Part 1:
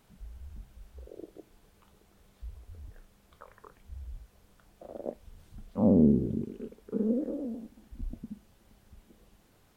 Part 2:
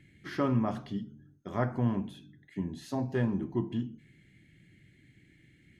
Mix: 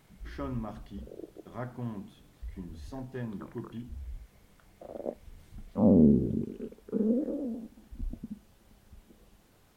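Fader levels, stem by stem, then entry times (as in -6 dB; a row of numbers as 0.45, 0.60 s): +1.0, -8.5 dB; 0.00, 0.00 s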